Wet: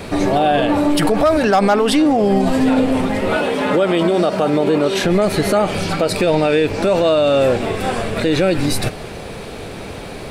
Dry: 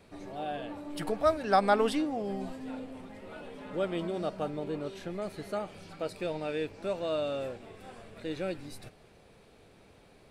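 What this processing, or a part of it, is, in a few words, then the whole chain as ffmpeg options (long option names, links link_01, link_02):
loud club master: -filter_complex "[0:a]asettb=1/sr,asplit=3[link_01][link_02][link_03];[link_01]atrim=end=3.364[link_04];[link_02]atrim=start=3.36:end=5.04,asetpts=PTS-STARTPTS,afade=type=in:duration=0.004:curve=qsin,afade=type=out:start_time=1.676:duration=0.004:curve=qsin,highpass=frequency=250:poles=1[link_05];[link_03]atrim=start=5.036[link_06];[link_04][link_05]acrossfade=duration=0.004:curve1=hsin:curve2=qsin[link_07];[link_07][link_06]acrossfade=duration=0.004:curve1=qsin:curve2=hsin,acompressor=threshold=-36dB:ratio=1.5,asoftclip=type=hard:threshold=-23dB,alimiter=level_in=34dB:limit=-1dB:release=50:level=0:latency=1,volume=-6dB"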